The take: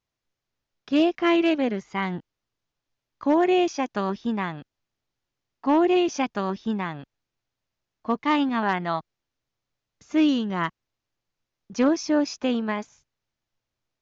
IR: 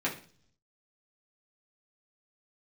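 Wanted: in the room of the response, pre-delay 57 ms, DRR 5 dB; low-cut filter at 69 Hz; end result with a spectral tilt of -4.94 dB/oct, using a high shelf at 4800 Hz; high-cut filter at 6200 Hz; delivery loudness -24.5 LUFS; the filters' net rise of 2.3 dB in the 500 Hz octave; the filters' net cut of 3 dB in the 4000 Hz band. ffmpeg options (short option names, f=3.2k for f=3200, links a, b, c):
-filter_complex "[0:a]highpass=69,lowpass=6.2k,equalizer=f=500:t=o:g=3.5,equalizer=f=4k:t=o:g=-6.5,highshelf=f=4.8k:g=5,asplit=2[a][b];[1:a]atrim=start_sample=2205,adelay=57[c];[b][c]afir=irnorm=-1:irlink=0,volume=-13dB[d];[a][d]amix=inputs=2:normalize=0,volume=-3dB"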